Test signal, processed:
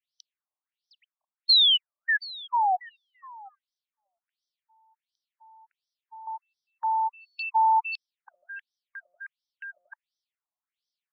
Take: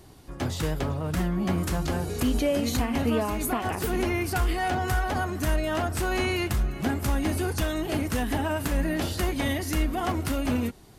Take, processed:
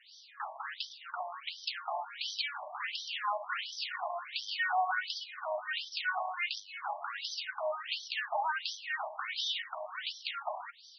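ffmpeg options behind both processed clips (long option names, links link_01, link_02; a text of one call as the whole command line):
ffmpeg -i in.wav -af "asoftclip=type=tanh:threshold=-22dB,bass=frequency=250:gain=-7,treble=frequency=4000:gain=10,afftfilt=real='re*between(b*sr/1024,800*pow(4400/800,0.5+0.5*sin(2*PI*1.4*pts/sr))/1.41,800*pow(4400/800,0.5+0.5*sin(2*PI*1.4*pts/sr))*1.41)':imag='im*between(b*sr/1024,800*pow(4400/800,0.5+0.5*sin(2*PI*1.4*pts/sr))/1.41,800*pow(4400/800,0.5+0.5*sin(2*PI*1.4*pts/sr))*1.41)':win_size=1024:overlap=0.75,volume=4dB" out.wav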